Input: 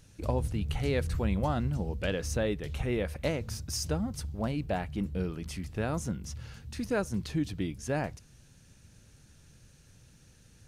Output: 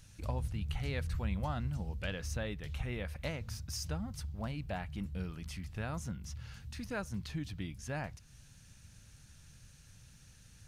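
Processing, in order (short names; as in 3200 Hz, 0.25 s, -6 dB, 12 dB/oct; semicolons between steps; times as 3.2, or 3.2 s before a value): bell 380 Hz -10.5 dB 1.6 oct; in parallel at -0.5 dB: compressor, threshold -49 dBFS, peak gain reduction 20.5 dB; on the sum: dynamic EQ 8900 Hz, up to -5 dB, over -55 dBFS, Q 0.72; gain -4.5 dB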